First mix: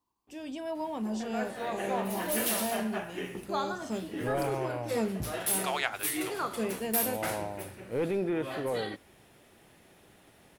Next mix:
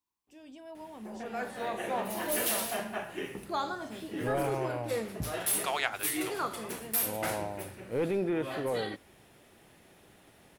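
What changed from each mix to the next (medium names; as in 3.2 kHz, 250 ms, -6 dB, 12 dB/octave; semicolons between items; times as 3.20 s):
first voice -11.0 dB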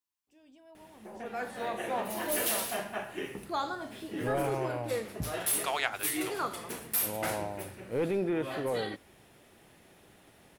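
first voice -9.0 dB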